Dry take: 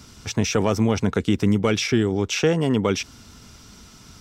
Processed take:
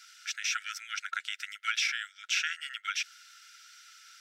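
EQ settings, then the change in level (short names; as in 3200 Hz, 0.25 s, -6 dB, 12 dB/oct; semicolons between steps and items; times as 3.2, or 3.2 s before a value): brick-wall FIR high-pass 1300 Hz; high shelf 3000 Hz -9 dB; +1.5 dB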